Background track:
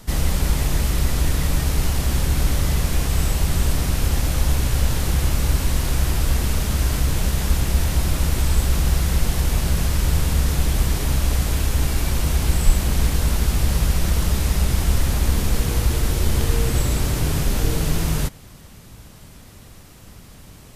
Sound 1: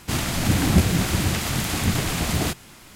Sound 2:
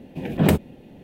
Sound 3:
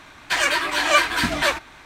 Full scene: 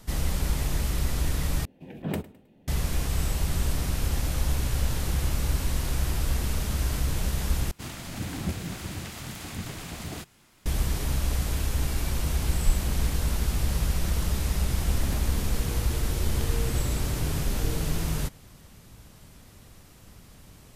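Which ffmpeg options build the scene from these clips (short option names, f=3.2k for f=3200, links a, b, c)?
-filter_complex "[2:a]asplit=2[a][b];[0:a]volume=-7dB[c];[a]aecho=1:1:105|210|315:0.106|0.0371|0.013[d];[b]acompressor=threshold=-22dB:ratio=6:attack=3.2:release=140:knee=1:detection=peak[e];[c]asplit=3[f][g][h];[f]atrim=end=1.654[i];[d]atrim=end=1.03,asetpts=PTS-STARTPTS,volume=-13dB[j];[g]atrim=start=2.676:end=7.714[k];[1:a]atrim=end=2.95,asetpts=PTS-STARTPTS,volume=-13.5dB[l];[h]atrim=start=10.656[m];[e]atrim=end=1.03,asetpts=PTS-STARTPTS,volume=-12.5dB,afade=t=in:d=0.004:c=hsin,afade=t=out:st=1.026:d=0.004:c=hsin,adelay=14640[n];[i][j]acrossfade=d=0.004:c1=hsin:c2=hsin[o];[o][k]acrossfade=d=0.004:c1=hsin:c2=hsin[p];[p][l]acrossfade=d=0.004:c1=hsin:c2=hsin[q];[q][m]acrossfade=d=0.004:c1=hsin:c2=hsin[r];[r][n]amix=inputs=2:normalize=0"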